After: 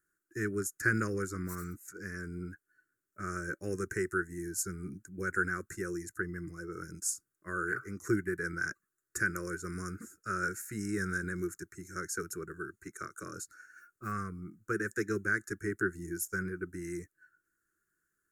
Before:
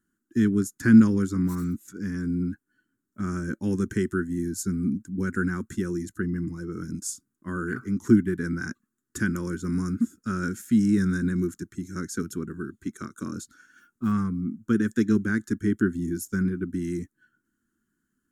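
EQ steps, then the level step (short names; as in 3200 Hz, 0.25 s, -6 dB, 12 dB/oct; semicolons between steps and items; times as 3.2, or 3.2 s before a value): low shelf 270 Hz -10 dB; fixed phaser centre 900 Hz, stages 6; notch 3200 Hz, Q 12; +1.5 dB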